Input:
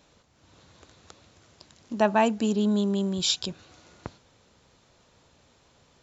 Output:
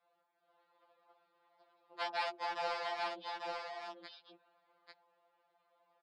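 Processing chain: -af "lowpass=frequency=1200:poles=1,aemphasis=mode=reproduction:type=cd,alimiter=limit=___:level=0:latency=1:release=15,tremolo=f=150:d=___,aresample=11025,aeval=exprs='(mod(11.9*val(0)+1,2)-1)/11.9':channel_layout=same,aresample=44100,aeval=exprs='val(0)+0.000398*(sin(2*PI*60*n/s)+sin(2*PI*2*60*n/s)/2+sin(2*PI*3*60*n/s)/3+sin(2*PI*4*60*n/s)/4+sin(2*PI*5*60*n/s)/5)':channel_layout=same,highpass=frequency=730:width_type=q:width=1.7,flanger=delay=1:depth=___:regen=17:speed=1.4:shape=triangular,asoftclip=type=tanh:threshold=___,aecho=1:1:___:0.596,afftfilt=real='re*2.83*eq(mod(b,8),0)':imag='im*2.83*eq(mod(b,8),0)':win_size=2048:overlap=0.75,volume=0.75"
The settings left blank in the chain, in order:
0.178, 0.788, 8.5, 0.106, 843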